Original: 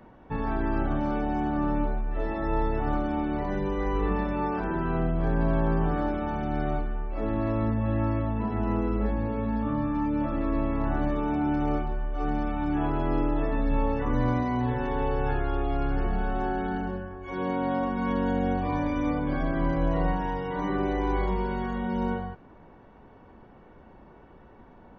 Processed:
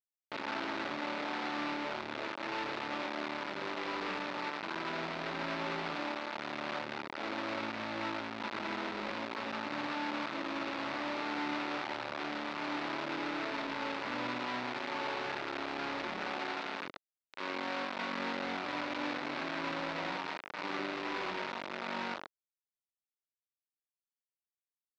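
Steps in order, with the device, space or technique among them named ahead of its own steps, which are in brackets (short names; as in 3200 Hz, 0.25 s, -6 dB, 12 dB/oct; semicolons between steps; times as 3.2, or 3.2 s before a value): 10.63–12.04 notches 50/100/150 Hz; low shelf 390 Hz +3.5 dB; hand-held game console (bit-crush 4-bit; speaker cabinet 420–4000 Hz, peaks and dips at 460 Hz -9 dB, 730 Hz -6 dB, 1100 Hz -3 dB, 1700 Hz -3 dB, 3100 Hz -5 dB); gain -7 dB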